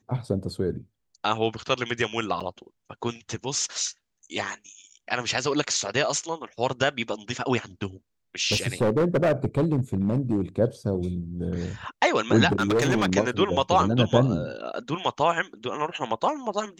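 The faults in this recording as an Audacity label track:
2.400000	2.410000	gap 6 ms
8.510000	10.410000	clipped -17.5 dBFS
12.520000	13.130000	clipped -18 dBFS

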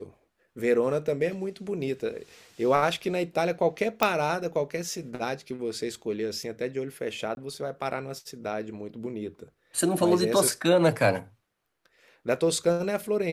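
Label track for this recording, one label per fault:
4.030000	4.030000	pop -7 dBFS
7.350000	7.370000	gap 21 ms

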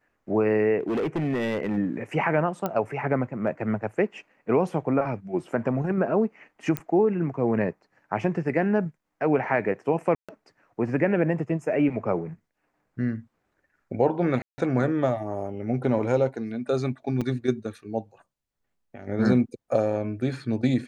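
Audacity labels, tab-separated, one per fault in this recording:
0.790000	1.780000	clipped -22.5 dBFS
2.660000	2.660000	pop -14 dBFS
6.770000	6.770000	pop -12 dBFS
10.150000	10.290000	gap 0.136 s
14.420000	14.580000	gap 0.16 s
17.210000	17.220000	gap 5.6 ms

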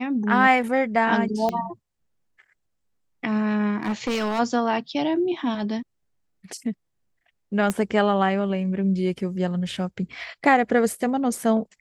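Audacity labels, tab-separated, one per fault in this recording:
1.490000	1.490000	pop -13 dBFS
3.830000	4.400000	clipped -21 dBFS
7.700000	7.700000	pop -10 dBFS

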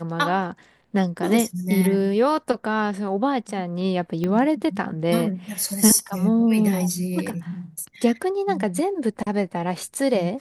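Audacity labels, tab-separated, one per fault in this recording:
4.240000	4.240000	pop -14 dBFS

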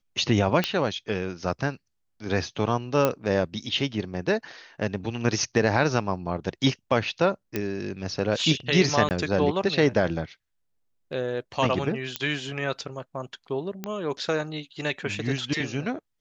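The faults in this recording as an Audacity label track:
0.640000	0.640000	pop -9 dBFS
3.050000	3.050000	pop -8 dBFS
7.560000	7.560000	pop -12 dBFS
9.090000	9.110000	gap 19 ms
12.160000	12.160000	pop -10 dBFS
13.840000	13.840000	pop -16 dBFS

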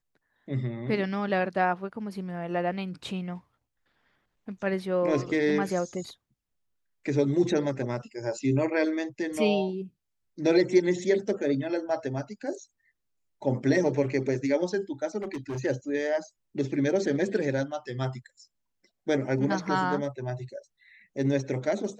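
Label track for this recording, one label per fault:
15.180000	15.600000	clipped -29.5 dBFS

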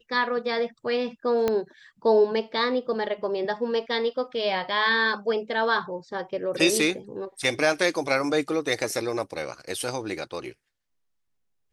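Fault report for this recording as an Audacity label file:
1.480000	1.480000	pop -11 dBFS

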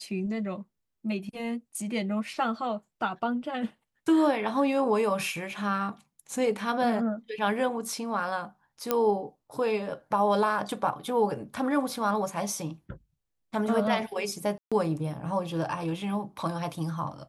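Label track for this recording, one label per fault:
8.910000	8.910000	pop -10 dBFS
14.580000	14.720000	gap 0.136 s

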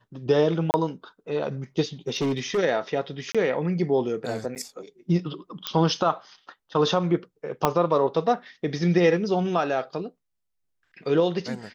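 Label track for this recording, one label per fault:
0.710000	0.740000	gap 29 ms
2.080000	2.590000	clipped -21 dBFS
3.320000	3.350000	gap 26 ms
4.550000	4.560000	gap 8.9 ms
5.670000	5.670000	pop -10 dBFS
7.650000	7.650000	pop -6 dBFS

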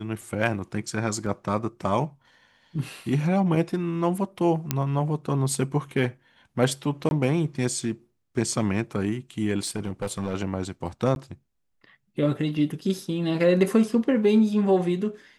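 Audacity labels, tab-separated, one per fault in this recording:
1.260000	1.260000	gap 3.9 ms
4.710000	4.710000	pop -7 dBFS
7.090000	7.110000	gap 21 ms
9.630000	10.340000	clipped -22.5 dBFS
11.150000	11.160000	gap 11 ms

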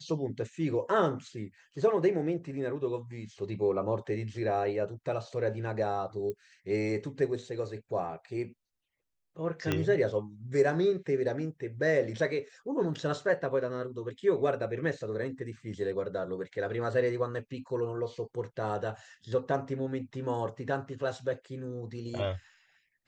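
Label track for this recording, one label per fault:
6.300000	6.300000	pop -25 dBFS
9.720000	9.720000	pop -14 dBFS
12.940000	12.940000	gap 2.6 ms

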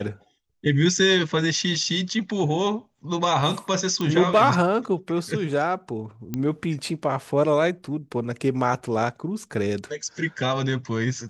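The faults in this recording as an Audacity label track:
4.010000	4.010000	pop -14 dBFS
6.340000	6.340000	pop -14 dBFS

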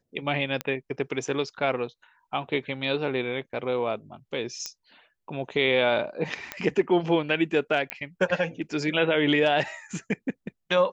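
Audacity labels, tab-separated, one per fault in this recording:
0.610000	0.610000	pop -14 dBFS
4.660000	4.660000	pop -18 dBFS
6.520000	6.520000	pop -14 dBFS
7.900000	7.900000	pop -12 dBFS

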